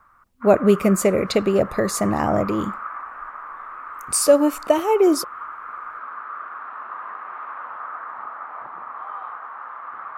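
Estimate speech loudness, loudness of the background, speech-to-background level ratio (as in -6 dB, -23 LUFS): -19.5 LUFS, -34.0 LUFS, 14.5 dB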